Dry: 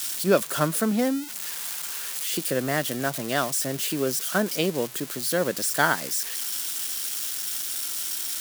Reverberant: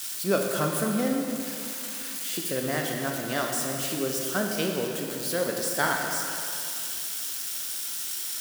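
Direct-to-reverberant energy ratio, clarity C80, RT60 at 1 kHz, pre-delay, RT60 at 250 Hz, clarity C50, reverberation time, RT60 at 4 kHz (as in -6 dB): 0.5 dB, 3.0 dB, 2.7 s, 7 ms, 2.7 s, 2.0 dB, 2.7 s, 2.5 s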